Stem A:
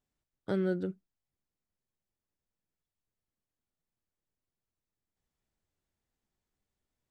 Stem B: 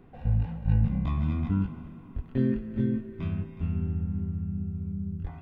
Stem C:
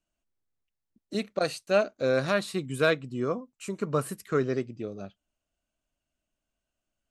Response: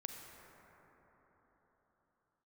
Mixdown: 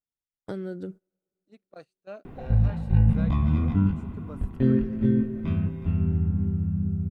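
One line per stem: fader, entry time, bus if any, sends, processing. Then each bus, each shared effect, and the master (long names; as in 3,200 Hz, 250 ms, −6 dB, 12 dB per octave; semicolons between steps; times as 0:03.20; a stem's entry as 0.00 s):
+2.5 dB, 0.00 s, send −22.5 dB, downward compressor 5 to 1, threshold −33 dBFS, peak gain reduction 7 dB; bass and treble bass 0 dB, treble +13 dB
+2.0 dB, 2.25 s, send −5.5 dB, high-shelf EQ 3,900 Hz +10.5 dB; upward compression, threshold −38 dBFS
−17.0 dB, 0.35 s, no send, no processing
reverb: on, RT60 4.5 s, pre-delay 33 ms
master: noise gate −43 dBFS, range −18 dB; high-shelf EQ 2,400 Hz −10.5 dB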